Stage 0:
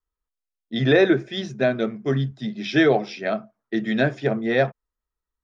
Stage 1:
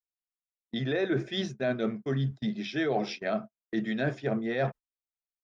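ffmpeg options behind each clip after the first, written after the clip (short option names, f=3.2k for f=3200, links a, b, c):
-af "agate=range=-31dB:threshold=-34dB:ratio=16:detection=peak,areverse,acompressor=threshold=-26dB:ratio=6,areverse"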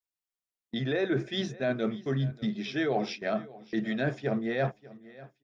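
-af "aecho=1:1:590|1180|1770:0.1|0.035|0.0123"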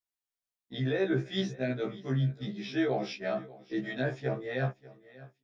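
-af "afftfilt=real='re*1.73*eq(mod(b,3),0)':imag='im*1.73*eq(mod(b,3),0)':win_size=2048:overlap=0.75"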